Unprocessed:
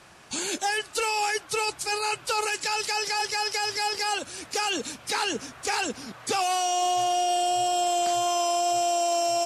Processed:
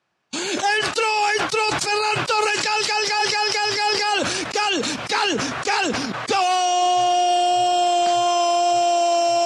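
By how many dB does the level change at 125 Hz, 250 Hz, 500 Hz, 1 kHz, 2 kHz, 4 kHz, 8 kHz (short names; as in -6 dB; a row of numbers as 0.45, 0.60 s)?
+13.0, +8.5, +7.0, +7.0, +7.5, +6.5, +2.0 dB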